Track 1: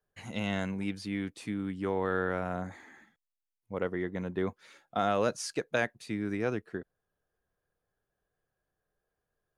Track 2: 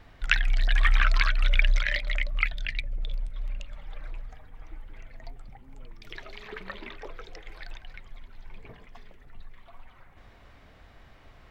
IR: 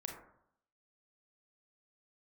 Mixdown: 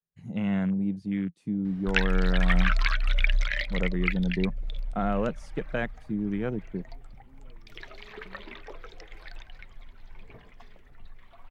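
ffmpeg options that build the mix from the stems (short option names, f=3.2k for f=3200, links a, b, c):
-filter_complex "[0:a]afwtdn=0.0112,equalizer=f=170:w=1.9:g=14.5,volume=-2dB[a];[1:a]adelay=1650,volume=-2dB[b];[a][b]amix=inputs=2:normalize=0"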